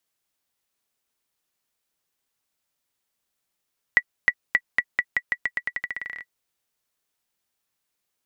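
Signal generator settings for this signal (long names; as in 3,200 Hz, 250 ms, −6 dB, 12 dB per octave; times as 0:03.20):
bouncing ball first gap 0.31 s, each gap 0.87, 1,950 Hz, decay 57 ms −4.5 dBFS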